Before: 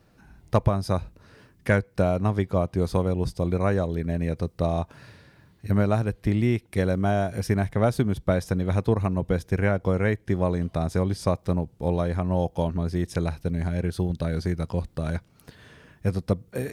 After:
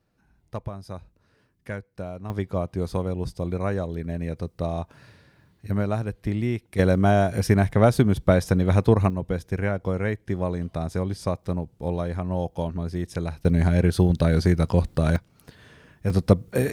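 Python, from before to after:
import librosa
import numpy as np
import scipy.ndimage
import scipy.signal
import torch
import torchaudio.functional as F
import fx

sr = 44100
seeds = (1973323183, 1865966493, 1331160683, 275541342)

y = fx.gain(x, sr, db=fx.steps((0.0, -12.0), (2.3, -3.0), (6.79, 4.5), (9.1, -2.5), (13.45, 7.0), (15.16, -0.5), (16.1, 7.0)))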